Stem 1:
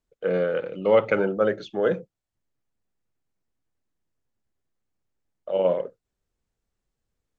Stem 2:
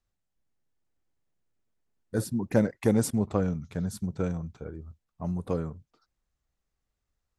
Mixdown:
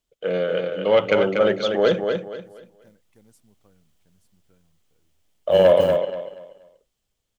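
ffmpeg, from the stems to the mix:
ffmpeg -i stem1.wav -i stem2.wav -filter_complex "[0:a]dynaudnorm=framelen=230:gausssize=13:maxgain=12dB,asoftclip=type=tanh:threshold=-8dB,equalizer=frequency=630:width_type=o:width=0.33:gain=4,equalizer=frequency=1600:width_type=o:width=0.33:gain=-3,equalizer=frequency=3150:width_type=o:width=0.33:gain=7,volume=-1dB,asplit=3[link_01][link_02][link_03];[link_02]volume=-5.5dB[link_04];[1:a]acrusher=bits=7:mode=log:mix=0:aa=0.000001,adelay=300,volume=-0.5dB[link_05];[link_03]apad=whole_len=343457[link_06];[link_05][link_06]sidechaingate=range=-33dB:threshold=-34dB:ratio=16:detection=peak[link_07];[link_04]aecho=0:1:239|478|717|956:1|0.29|0.0841|0.0244[link_08];[link_01][link_07][link_08]amix=inputs=3:normalize=0,highshelf=frequency=2000:gain=8" out.wav

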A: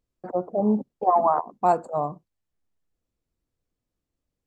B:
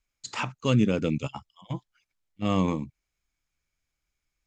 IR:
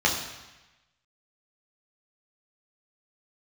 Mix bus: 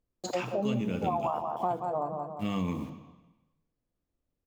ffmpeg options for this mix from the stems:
-filter_complex "[0:a]highshelf=frequency=2400:gain=-10.5,volume=-0.5dB,asplit=2[link_01][link_02];[link_02]volume=-8.5dB[link_03];[1:a]acrusher=bits=8:mix=0:aa=0.000001,volume=-2dB,asplit=2[link_04][link_05];[link_05]volume=-20.5dB[link_06];[2:a]atrim=start_sample=2205[link_07];[link_06][link_07]afir=irnorm=-1:irlink=0[link_08];[link_03]aecho=0:1:176|352|528|704|880|1056:1|0.45|0.202|0.0911|0.041|0.0185[link_09];[link_01][link_04][link_08][link_09]amix=inputs=4:normalize=0,bandreject=frequency=50:width_type=h:width=6,bandreject=frequency=100:width_type=h:width=6,bandreject=frequency=150:width_type=h:width=6,acompressor=threshold=-28dB:ratio=4"

